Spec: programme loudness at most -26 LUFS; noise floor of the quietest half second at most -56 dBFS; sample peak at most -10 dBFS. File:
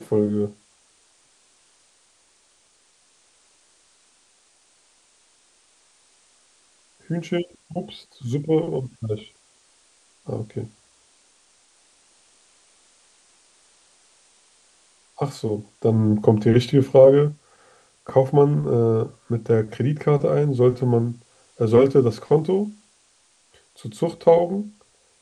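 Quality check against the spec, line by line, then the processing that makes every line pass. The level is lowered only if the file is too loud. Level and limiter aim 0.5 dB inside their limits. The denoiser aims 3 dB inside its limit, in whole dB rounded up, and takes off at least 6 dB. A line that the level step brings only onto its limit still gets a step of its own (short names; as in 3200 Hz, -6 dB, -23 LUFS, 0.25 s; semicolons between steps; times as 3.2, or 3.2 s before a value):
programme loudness -21.0 LUFS: fail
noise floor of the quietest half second -60 dBFS: OK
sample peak -2.0 dBFS: fail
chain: gain -5.5 dB; limiter -10.5 dBFS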